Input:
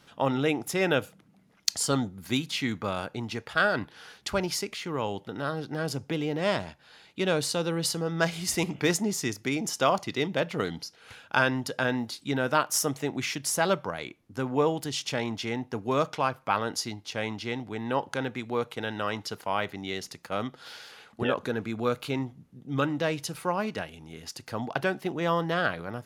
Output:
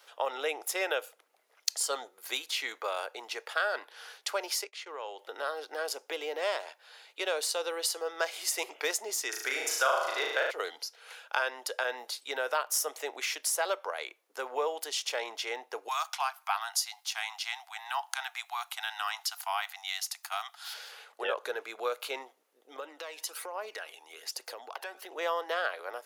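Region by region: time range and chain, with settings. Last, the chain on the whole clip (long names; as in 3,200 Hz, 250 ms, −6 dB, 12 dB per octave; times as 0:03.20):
0:04.64–0:05.19: low-pass filter 7,500 Hz + downward expander −33 dBFS + downward compressor 2.5 to 1, threshold −35 dBFS
0:09.29–0:10.51: parametric band 1,500 Hz +13 dB 0.42 octaves + flutter between parallel walls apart 6.4 metres, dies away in 0.78 s
0:15.88–0:20.74: Chebyshev high-pass filter 690 Hz, order 8 + high-shelf EQ 5,000 Hz +10 dB
0:22.76–0:25.12: downward compressor 16 to 1, threshold −33 dBFS + phase shifter 1.2 Hz, delay 1.2 ms, feedback 46%
whole clip: Butterworth high-pass 450 Hz 36 dB per octave; high-shelf EQ 12,000 Hz +10 dB; downward compressor 2 to 1, threshold −30 dBFS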